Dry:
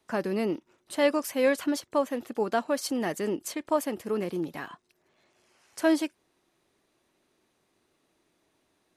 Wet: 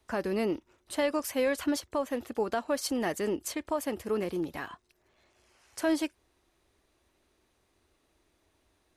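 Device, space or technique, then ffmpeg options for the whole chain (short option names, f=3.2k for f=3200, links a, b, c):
car stereo with a boomy subwoofer: -af "lowshelf=f=100:t=q:w=1.5:g=12.5,alimiter=limit=-19.5dB:level=0:latency=1:release=130"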